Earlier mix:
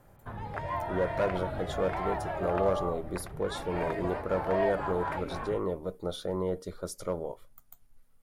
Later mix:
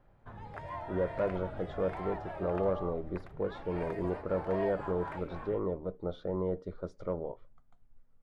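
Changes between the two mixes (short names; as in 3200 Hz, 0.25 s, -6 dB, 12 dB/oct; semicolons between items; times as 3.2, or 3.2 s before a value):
speech: add tape spacing loss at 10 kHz 40 dB; background -7.5 dB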